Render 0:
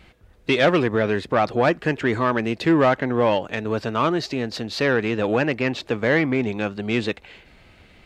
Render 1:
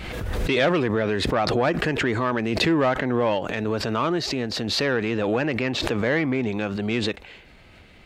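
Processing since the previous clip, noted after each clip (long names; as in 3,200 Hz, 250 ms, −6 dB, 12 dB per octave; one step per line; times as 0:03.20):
in parallel at +2 dB: brickwall limiter −18 dBFS, peak gain reduction 9.5 dB
on the sum: background raised ahead of every attack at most 29 dB per second
level −7 dB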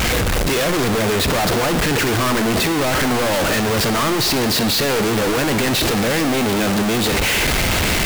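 sign of each sample alone
on a send at −11.5 dB: convolution reverb, pre-delay 36 ms
on the sum: level +6 dB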